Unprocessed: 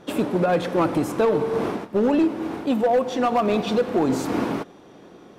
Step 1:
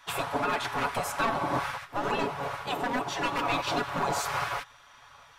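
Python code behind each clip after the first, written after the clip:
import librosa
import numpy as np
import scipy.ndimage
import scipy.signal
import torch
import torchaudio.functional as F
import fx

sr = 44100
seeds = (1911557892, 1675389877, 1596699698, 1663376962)

y = fx.spec_gate(x, sr, threshold_db=-15, keep='weak')
y = fx.peak_eq(y, sr, hz=1000.0, db=4.0, octaves=1.1)
y = y + 0.52 * np.pad(y, (int(7.1 * sr / 1000.0), 0))[:len(y)]
y = y * 10.0 ** (1.0 / 20.0)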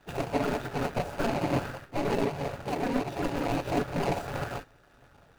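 y = scipy.ndimage.median_filter(x, 41, mode='constant')
y = y * 10.0 ** (5.5 / 20.0)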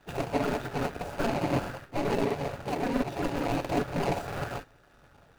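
y = fx.buffer_crackle(x, sr, first_s=0.92, period_s=0.67, block=2048, kind='repeat')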